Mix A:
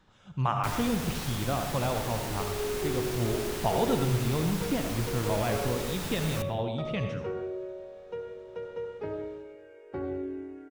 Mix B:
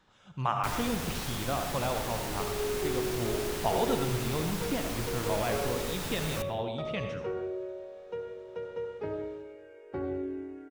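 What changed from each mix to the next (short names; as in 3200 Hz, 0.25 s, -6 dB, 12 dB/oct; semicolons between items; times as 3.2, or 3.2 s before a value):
speech: add low shelf 260 Hz -7.5 dB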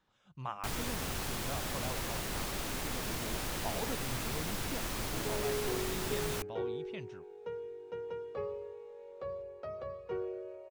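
speech -7.5 dB; second sound: entry +2.85 s; reverb: off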